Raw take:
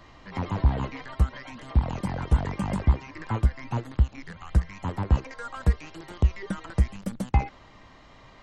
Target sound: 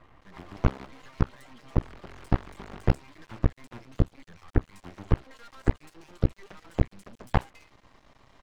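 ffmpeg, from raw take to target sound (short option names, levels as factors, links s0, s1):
-filter_complex "[0:a]acrossover=split=2500[s0][s1];[s1]adelay=210[s2];[s0][s2]amix=inputs=2:normalize=0,aeval=exprs='max(val(0),0)':c=same,aeval=exprs='0.335*(cos(1*acos(clip(val(0)/0.335,-1,1)))-cos(1*PI/2))+0.0168*(cos(7*acos(clip(val(0)/0.335,-1,1)))-cos(7*PI/2))+0.0596*(cos(8*acos(clip(val(0)/0.335,-1,1)))-cos(8*PI/2))':c=same,volume=1.33"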